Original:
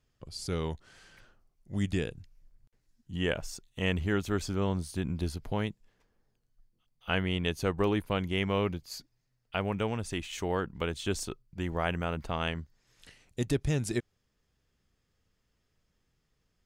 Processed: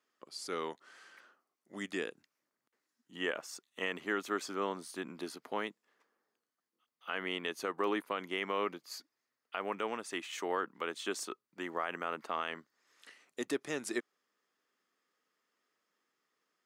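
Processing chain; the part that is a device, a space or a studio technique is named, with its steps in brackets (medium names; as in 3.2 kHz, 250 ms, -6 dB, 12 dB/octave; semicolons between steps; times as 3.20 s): laptop speaker (high-pass 270 Hz 24 dB/octave; peaking EQ 1.2 kHz +8.5 dB 0.55 oct; peaking EQ 1.9 kHz +4.5 dB 0.4 oct; peak limiter -18.5 dBFS, peak gain reduction 8.5 dB); trim -3.5 dB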